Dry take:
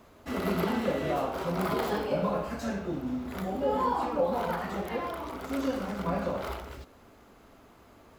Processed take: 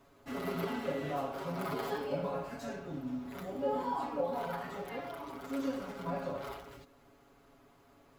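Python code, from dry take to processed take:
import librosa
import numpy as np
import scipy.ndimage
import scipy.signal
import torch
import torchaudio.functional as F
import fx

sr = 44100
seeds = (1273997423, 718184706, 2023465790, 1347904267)

y = x + 0.82 * np.pad(x, (int(7.2 * sr / 1000.0), 0))[:len(x)]
y = y * librosa.db_to_amplitude(-9.0)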